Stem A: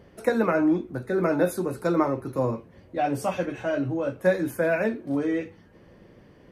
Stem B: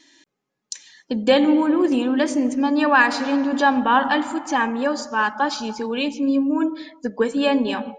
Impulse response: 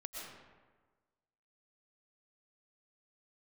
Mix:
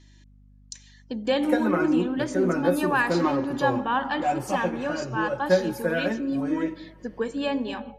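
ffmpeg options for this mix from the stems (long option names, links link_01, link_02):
-filter_complex "[0:a]aecho=1:1:5.5:0.83,adelay=1250,volume=-4.5dB,asplit=2[link_01][link_02];[link_02]volume=-17dB[link_03];[1:a]aeval=exprs='val(0)+0.00631*(sin(2*PI*50*n/s)+sin(2*PI*2*50*n/s)/2+sin(2*PI*3*50*n/s)/3+sin(2*PI*4*50*n/s)/4+sin(2*PI*5*50*n/s)/5)':channel_layout=same,volume=-8dB[link_04];[2:a]atrim=start_sample=2205[link_05];[link_03][link_05]afir=irnorm=-1:irlink=0[link_06];[link_01][link_04][link_06]amix=inputs=3:normalize=0"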